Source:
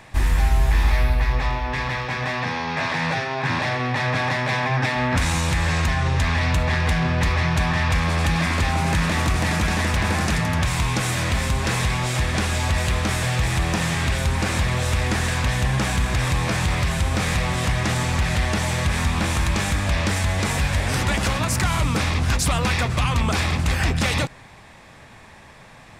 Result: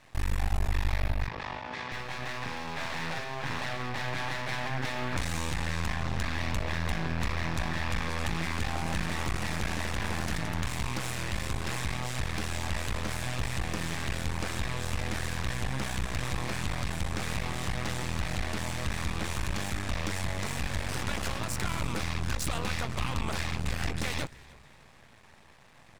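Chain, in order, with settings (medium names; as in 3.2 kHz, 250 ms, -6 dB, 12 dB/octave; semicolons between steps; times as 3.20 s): half-wave rectifier; 1.28–1.92 s: band-pass 180–5800 Hz; frequency-shifting echo 309 ms, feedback 39%, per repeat -70 Hz, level -22.5 dB; trim -7 dB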